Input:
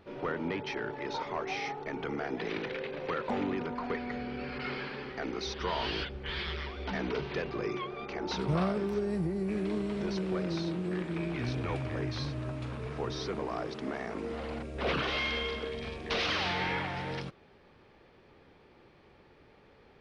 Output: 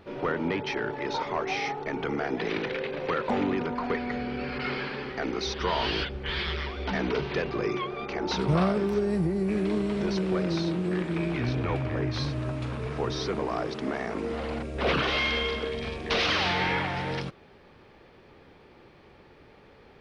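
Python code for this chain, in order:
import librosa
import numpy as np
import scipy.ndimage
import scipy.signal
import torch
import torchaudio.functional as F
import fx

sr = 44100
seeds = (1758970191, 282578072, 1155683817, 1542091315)

y = fx.high_shelf(x, sr, hz=fx.line((11.38, 6800.0), (12.13, 4600.0)), db=-11.0, at=(11.38, 12.13), fade=0.02)
y = F.gain(torch.from_numpy(y), 5.5).numpy()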